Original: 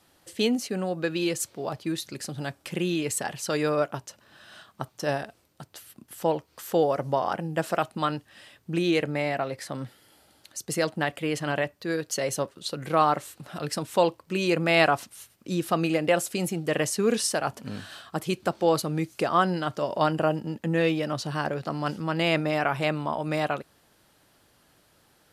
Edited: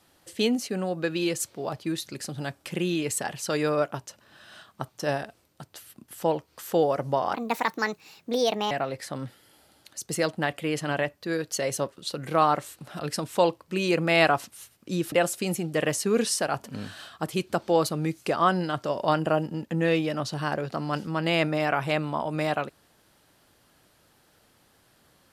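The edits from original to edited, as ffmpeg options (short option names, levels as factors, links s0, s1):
-filter_complex "[0:a]asplit=4[s0][s1][s2][s3];[s0]atrim=end=7.344[s4];[s1]atrim=start=7.34:end=9.3,asetpts=PTS-STARTPTS,asetrate=63063,aresample=44100[s5];[s2]atrim=start=9.296:end=15.712[s6];[s3]atrim=start=16.048[s7];[s4][s5]acrossfade=d=0.004:c1=hsin:c2=hsin[s8];[s8][s6]acrossfade=d=0.004:c1=hsin:c2=hsin[s9];[s9][s7]acrossfade=d=0.004:c1=hsin:c2=hsin"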